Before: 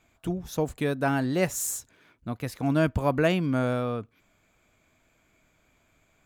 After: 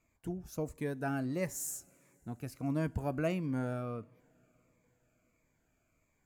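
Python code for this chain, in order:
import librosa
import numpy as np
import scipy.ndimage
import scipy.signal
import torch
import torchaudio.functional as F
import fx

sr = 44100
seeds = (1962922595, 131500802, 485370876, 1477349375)

y = fx.peak_eq(x, sr, hz=3500.0, db=-11.0, octaves=0.51)
y = fx.rev_double_slope(y, sr, seeds[0], early_s=0.38, late_s=4.4, knee_db=-18, drr_db=18.5)
y = fx.notch_cascade(y, sr, direction='falling', hz=1.5)
y = y * 10.0 ** (-8.5 / 20.0)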